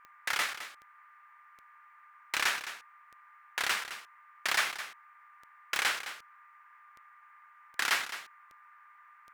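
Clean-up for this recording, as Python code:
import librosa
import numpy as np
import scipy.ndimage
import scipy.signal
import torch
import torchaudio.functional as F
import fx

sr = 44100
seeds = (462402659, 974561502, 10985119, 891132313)

y = fx.fix_declick_ar(x, sr, threshold=10.0)
y = fx.notch(y, sr, hz=1200.0, q=30.0)
y = fx.noise_reduce(y, sr, print_start_s=1.14, print_end_s=1.64, reduce_db=21.0)
y = fx.fix_echo_inverse(y, sr, delay_ms=213, level_db=-12.0)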